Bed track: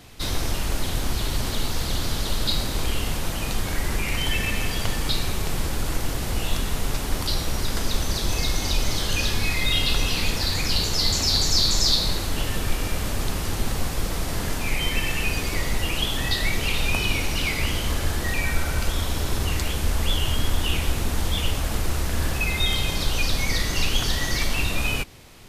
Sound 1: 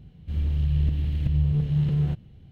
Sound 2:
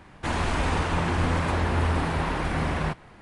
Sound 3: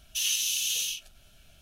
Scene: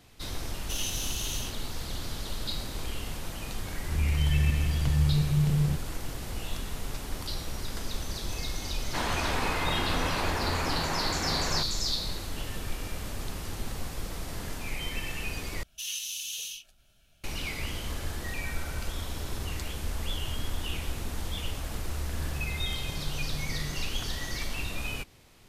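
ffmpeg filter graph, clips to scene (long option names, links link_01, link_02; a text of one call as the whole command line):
ffmpeg -i bed.wav -i cue0.wav -i cue1.wav -i cue2.wav -filter_complex "[3:a]asplit=2[link_01][link_02];[1:a]asplit=2[link_03][link_04];[0:a]volume=-10dB[link_05];[2:a]lowshelf=frequency=180:gain=-11[link_06];[link_04]aeval=exprs='val(0)+0.5*0.0266*sgn(val(0))':channel_layout=same[link_07];[link_05]asplit=2[link_08][link_09];[link_08]atrim=end=15.634[link_10];[link_02]atrim=end=1.61,asetpts=PTS-STARTPTS,volume=-7.5dB[link_11];[link_09]atrim=start=17.236[link_12];[link_01]atrim=end=1.61,asetpts=PTS-STARTPTS,volume=-7dB,afade=type=in:duration=0.004:curve=hsin,afade=type=out:start_time=1.606:duration=0.004:curve=hsin,adelay=540[link_13];[link_03]atrim=end=2.51,asetpts=PTS-STARTPTS,volume=-2dB,afade=type=in:duration=0.004:curve=hsin,afade=type=out:start_time=2.506:duration=0.004:curve=hsin,adelay=159201S[link_14];[link_06]atrim=end=3.21,asetpts=PTS-STARTPTS,volume=-2.5dB,afade=type=in:duration=0.004:curve=hsin,afade=type=out:start_time=3.206:duration=0.004:curve=hsin,adelay=8700[link_15];[link_07]atrim=end=2.51,asetpts=PTS-STARTPTS,volume=-18dB,afade=type=in:duration=0.004:curve=hsin,afade=type=out:start_time=2.506:duration=0.004:curve=hsin,adelay=21630[link_16];[link_10][link_11]acrossfade=duration=0.004:curve1=hsin:curve2=hsin[link_17];[link_17][link_12]acrossfade=duration=0.004:curve1=hsin:curve2=hsin[link_18];[link_18][link_13][link_14][link_15][link_16]amix=inputs=5:normalize=0" out.wav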